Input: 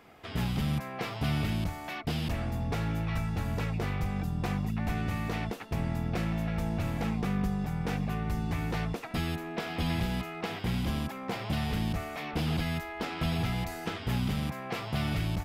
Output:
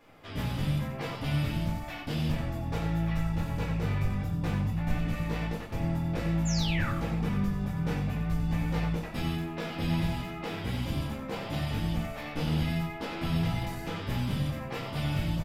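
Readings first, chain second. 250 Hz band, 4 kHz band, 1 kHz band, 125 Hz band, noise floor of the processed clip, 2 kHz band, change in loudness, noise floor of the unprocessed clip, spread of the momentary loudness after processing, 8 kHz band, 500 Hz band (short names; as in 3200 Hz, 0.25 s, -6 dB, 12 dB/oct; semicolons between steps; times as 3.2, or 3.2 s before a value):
+1.0 dB, 0.0 dB, -1.5 dB, +1.5 dB, -39 dBFS, -0.5 dB, +1.0 dB, -41 dBFS, 6 LU, +2.0 dB, 0.0 dB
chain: vibrato 4.5 Hz 14 cents; painted sound fall, 6.45–6.9, 1100–7500 Hz -34 dBFS; on a send: echo 90 ms -8 dB; on the sum: shoebox room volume 150 m³, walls furnished, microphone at 2.5 m; gain -7 dB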